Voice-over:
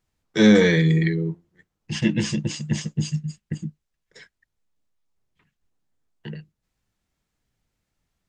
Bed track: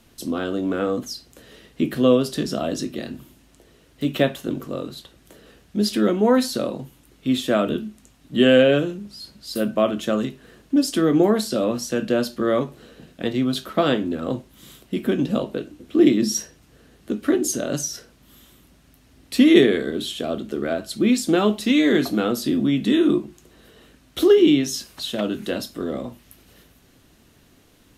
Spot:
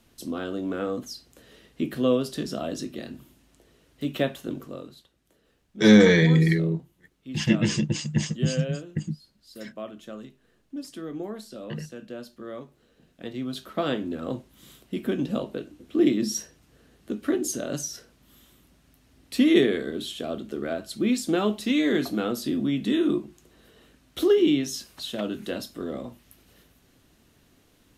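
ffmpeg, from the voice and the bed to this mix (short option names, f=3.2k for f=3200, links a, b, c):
-filter_complex "[0:a]adelay=5450,volume=0dB[a];[1:a]volume=6dB,afade=t=out:st=4.51:d=0.59:silence=0.266073,afade=t=in:st=12.87:d=1.32:silence=0.251189[b];[a][b]amix=inputs=2:normalize=0"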